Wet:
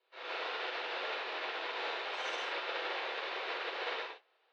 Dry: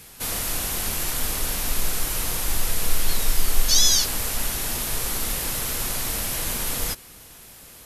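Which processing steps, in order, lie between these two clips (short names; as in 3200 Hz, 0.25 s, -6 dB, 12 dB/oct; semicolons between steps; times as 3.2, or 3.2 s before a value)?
notch 1800 Hz, Q 20; non-linear reverb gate 0.38 s flat, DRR -7 dB; speed mistake 45 rpm record played at 78 rpm; mistuned SSB +150 Hz 270–3600 Hz; upward expander 2.5:1, over -40 dBFS; gain -7.5 dB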